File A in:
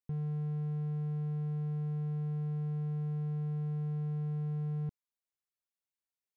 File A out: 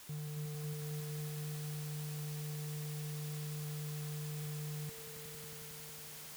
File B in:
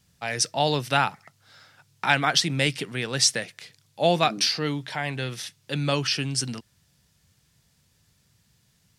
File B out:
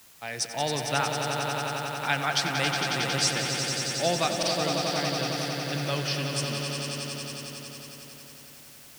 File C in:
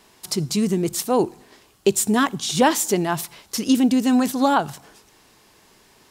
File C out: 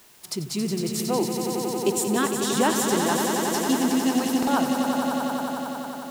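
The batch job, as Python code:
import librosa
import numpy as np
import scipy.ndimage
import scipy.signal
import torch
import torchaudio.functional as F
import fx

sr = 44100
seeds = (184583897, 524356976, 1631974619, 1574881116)

p1 = fx.highpass(x, sr, hz=85.0, slope=6)
p2 = fx.quant_dither(p1, sr, seeds[0], bits=6, dither='triangular')
p3 = p1 + (p2 * 10.0 ** (-9.5 / 20.0))
p4 = fx.echo_swell(p3, sr, ms=91, loudest=5, wet_db=-7.5)
p5 = fx.buffer_glitch(p4, sr, at_s=(4.38,), block=2048, repeats=1)
y = p5 * 10.0 ** (-8.5 / 20.0)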